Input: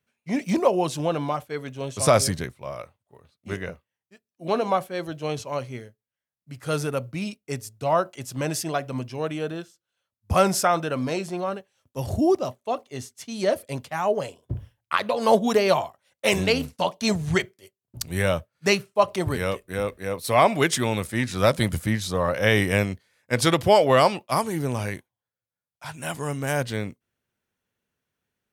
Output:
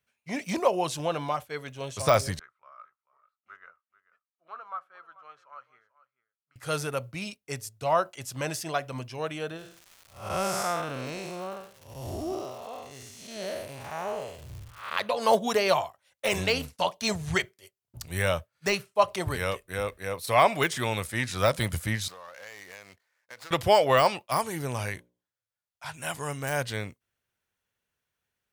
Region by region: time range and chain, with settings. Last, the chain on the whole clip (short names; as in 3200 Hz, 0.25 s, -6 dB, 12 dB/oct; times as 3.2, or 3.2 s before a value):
2.39–6.56 band-pass 1300 Hz, Q 9.5 + echo 0.439 s -18 dB
9.56–14.96 time blur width 0.224 s + crackle 330/s -40 dBFS
22.08–23.51 median filter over 15 samples + HPF 1300 Hz 6 dB/oct + compressor 5:1, threshold -40 dBFS
24.92–25.94 high shelf 9700 Hz -5.5 dB + notches 60/120/180/240/300/360/420/480/540/600 Hz
whole clip: de-esser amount 55%; bell 240 Hz -9 dB 2.1 oct